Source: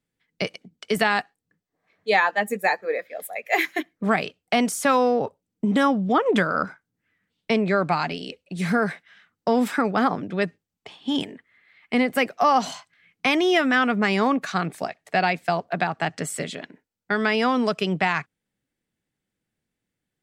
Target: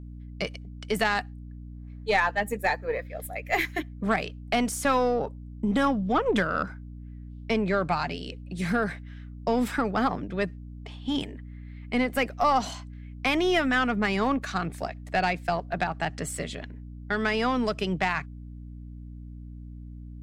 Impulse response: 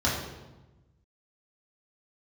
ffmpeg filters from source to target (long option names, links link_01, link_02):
-af "aeval=exprs='0.473*(cos(1*acos(clip(val(0)/0.473,-1,1)))-cos(1*PI/2))+0.0299*(cos(3*acos(clip(val(0)/0.473,-1,1)))-cos(3*PI/2))+0.0168*(cos(5*acos(clip(val(0)/0.473,-1,1)))-cos(5*PI/2))+0.0168*(cos(6*acos(clip(val(0)/0.473,-1,1)))-cos(6*PI/2))':channel_layout=same,aeval=exprs='val(0)+0.0158*(sin(2*PI*60*n/s)+sin(2*PI*2*60*n/s)/2+sin(2*PI*3*60*n/s)/3+sin(2*PI*4*60*n/s)/4+sin(2*PI*5*60*n/s)/5)':channel_layout=same,volume=-3.5dB"